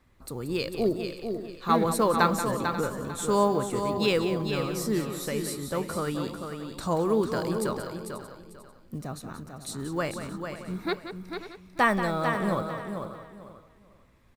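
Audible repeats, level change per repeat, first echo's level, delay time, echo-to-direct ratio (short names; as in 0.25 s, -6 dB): 9, no steady repeat, -10.5 dB, 0.181 s, -4.5 dB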